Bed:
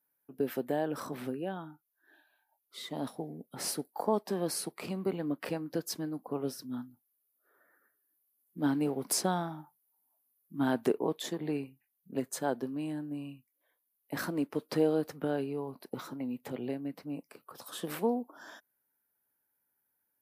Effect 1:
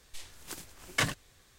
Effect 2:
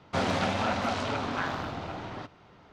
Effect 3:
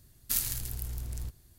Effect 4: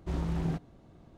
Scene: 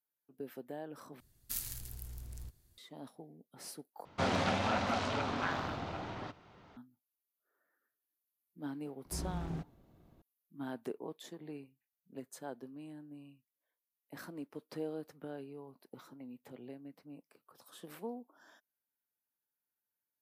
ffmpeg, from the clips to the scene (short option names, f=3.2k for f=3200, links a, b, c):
-filter_complex "[0:a]volume=-12.5dB,asplit=3[a][b][c];[a]atrim=end=1.204[d];[3:a]atrim=end=1.58,asetpts=PTS-STARTPTS,volume=-9.5dB[e];[b]atrim=start=2.776:end=4.054[f];[2:a]atrim=end=2.72,asetpts=PTS-STARTPTS,volume=-4dB[g];[c]atrim=start=6.766[h];[4:a]atrim=end=1.17,asetpts=PTS-STARTPTS,volume=-8dB,afade=t=in:d=0.004:c=hsin,afade=t=out:st=1.166:d=0.004:c=hsin,adelay=9050[i];[d][e]acrossfade=d=0.004:c1=hsin:c2=hsin[j];[j][f]acrossfade=d=0.004:c1=hsin:c2=hsin[k];[k][g]acrossfade=d=0.004:c1=hsin:c2=hsin[l];[l][h]acrossfade=d=0.004:c1=hsin:c2=hsin[m];[m][i]amix=inputs=2:normalize=0"